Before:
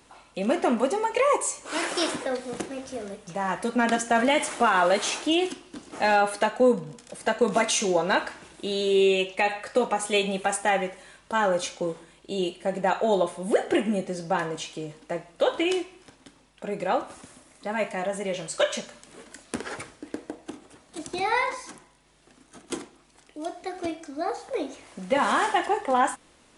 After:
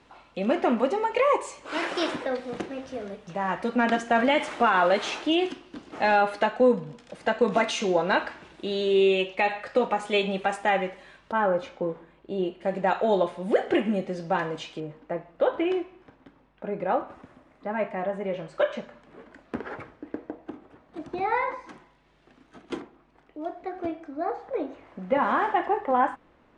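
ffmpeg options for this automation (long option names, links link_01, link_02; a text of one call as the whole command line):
ffmpeg -i in.wav -af "asetnsamples=nb_out_samples=441:pad=0,asendcmd='11.32 lowpass f 1700;12.61 lowpass f 3700;14.8 lowpass f 1700;21.69 lowpass f 2900;22.8 lowpass f 1700',lowpass=3700" out.wav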